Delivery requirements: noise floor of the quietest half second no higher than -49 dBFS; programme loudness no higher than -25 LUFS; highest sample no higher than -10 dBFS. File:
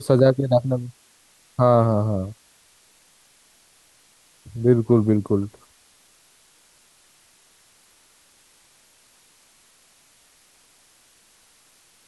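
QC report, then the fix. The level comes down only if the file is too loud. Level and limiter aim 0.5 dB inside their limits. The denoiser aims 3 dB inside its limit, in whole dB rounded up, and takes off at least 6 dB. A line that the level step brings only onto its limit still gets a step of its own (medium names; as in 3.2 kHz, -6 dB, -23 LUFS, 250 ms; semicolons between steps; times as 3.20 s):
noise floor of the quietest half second -57 dBFS: pass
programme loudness -20.5 LUFS: fail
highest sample -4.0 dBFS: fail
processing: trim -5 dB; peak limiter -10.5 dBFS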